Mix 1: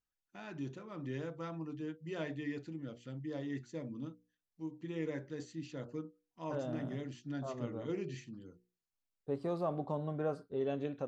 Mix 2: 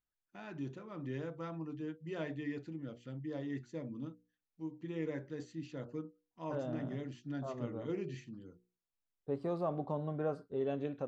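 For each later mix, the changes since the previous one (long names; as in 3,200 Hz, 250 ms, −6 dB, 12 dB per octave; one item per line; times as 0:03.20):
master: add high-shelf EQ 4,200 Hz −7 dB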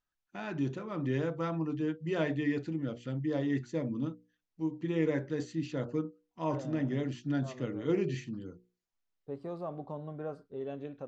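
first voice +9.0 dB
second voice −3.5 dB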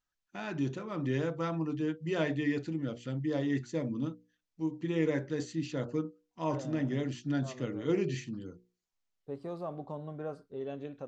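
master: add high-shelf EQ 4,200 Hz +7 dB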